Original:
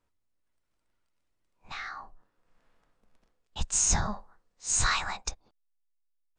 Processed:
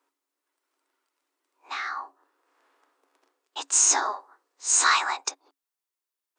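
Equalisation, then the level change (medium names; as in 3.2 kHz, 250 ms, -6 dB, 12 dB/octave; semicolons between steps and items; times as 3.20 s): rippled Chebyshev high-pass 270 Hz, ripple 6 dB; treble shelf 5.2 kHz +4.5 dB; +9.0 dB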